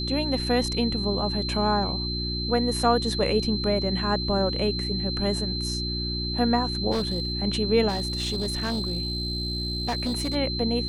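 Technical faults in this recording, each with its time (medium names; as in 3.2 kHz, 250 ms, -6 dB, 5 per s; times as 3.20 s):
hum 60 Hz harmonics 6 -31 dBFS
whine 4.1 kHz -30 dBFS
6.91–7.33 s: clipped -21.5 dBFS
7.88–10.36 s: clipped -23 dBFS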